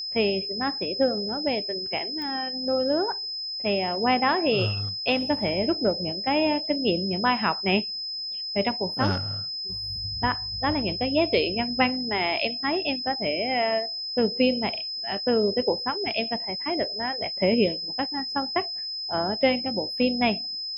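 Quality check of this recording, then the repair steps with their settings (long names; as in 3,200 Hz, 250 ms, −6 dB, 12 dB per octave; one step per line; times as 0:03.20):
whistle 5,100 Hz −30 dBFS
0:02.22: click −23 dBFS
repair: click removal
notch filter 5,100 Hz, Q 30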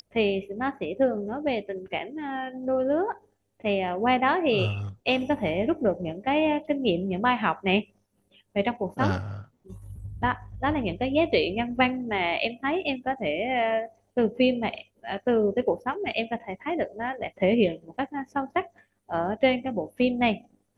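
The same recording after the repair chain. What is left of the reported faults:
none of them is left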